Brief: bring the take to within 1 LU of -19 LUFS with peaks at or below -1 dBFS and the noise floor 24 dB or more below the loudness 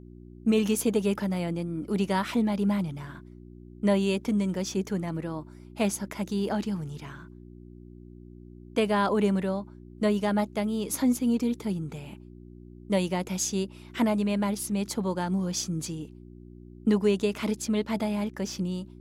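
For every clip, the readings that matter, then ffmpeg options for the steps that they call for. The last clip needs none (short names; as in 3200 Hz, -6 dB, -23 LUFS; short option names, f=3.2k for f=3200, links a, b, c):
hum 60 Hz; harmonics up to 360 Hz; hum level -44 dBFS; loudness -28.0 LUFS; peak -13.0 dBFS; loudness target -19.0 LUFS
-> -af "bandreject=f=60:t=h:w=4,bandreject=f=120:t=h:w=4,bandreject=f=180:t=h:w=4,bandreject=f=240:t=h:w=4,bandreject=f=300:t=h:w=4,bandreject=f=360:t=h:w=4"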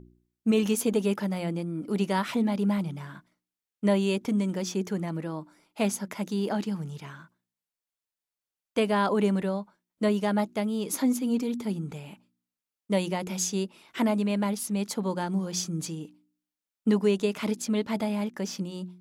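hum none; loudness -28.5 LUFS; peak -13.0 dBFS; loudness target -19.0 LUFS
-> -af "volume=9.5dB"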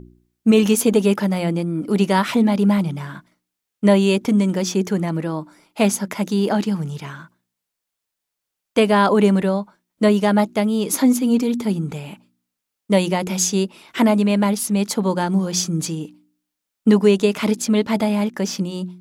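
loudness -19.0 LUFS; peak -3.5 dBFS; noise floor -82 dBFS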